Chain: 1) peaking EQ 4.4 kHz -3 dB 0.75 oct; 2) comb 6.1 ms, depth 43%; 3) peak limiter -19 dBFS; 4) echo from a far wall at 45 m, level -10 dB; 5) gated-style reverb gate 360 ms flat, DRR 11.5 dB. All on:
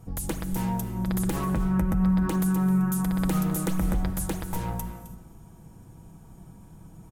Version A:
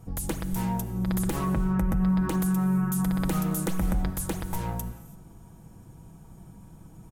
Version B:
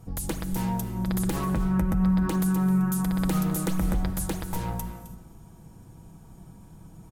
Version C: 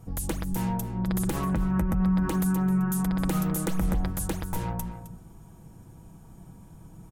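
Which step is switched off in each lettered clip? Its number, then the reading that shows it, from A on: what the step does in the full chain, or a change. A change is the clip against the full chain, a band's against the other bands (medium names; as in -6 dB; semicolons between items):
4, echo-to-direct -8.0 dB to -11.5 dB; 1, 4 kHz band +2.0 dB; 5, echo-to-direct -8.0 dB to -11.0 dB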